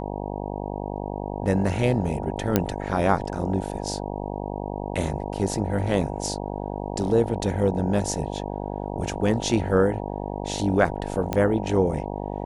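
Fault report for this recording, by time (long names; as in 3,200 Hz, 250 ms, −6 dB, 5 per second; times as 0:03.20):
mains buzz 50 Hz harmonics 19 −31 dBFS
0:02.56: click −4 dBFS
0:11.33: click −11 dBFS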